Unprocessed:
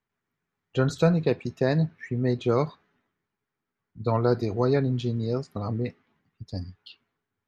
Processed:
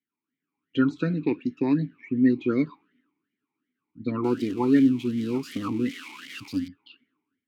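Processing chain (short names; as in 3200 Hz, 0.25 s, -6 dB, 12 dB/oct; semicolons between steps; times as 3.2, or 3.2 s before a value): 4.24–6.68 switching spikes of -23 dBFS; AGC gain up to 10 dB; vowel sweep i-u 2.7 Hz; gain +5.5 dB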